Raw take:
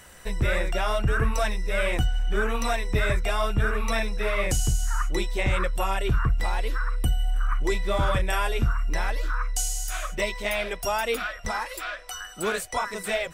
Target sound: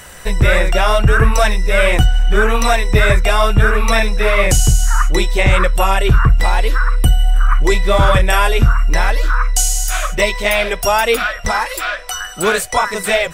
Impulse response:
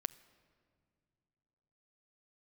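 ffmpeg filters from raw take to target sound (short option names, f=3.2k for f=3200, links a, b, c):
-filter_complex "[0:a]asplit=2[a][b];[b]equalizer=f=280:t=o:w=0.65:g=-5.5[c];[1:a]atrim=start_sample=2205,atrim=end_sample=3087[d];[c][d]afir=irnorm=-1:irlink=0,volume=5.5dB[e];[a][e]amix=inputs=2:normalize=0,volume=4dB"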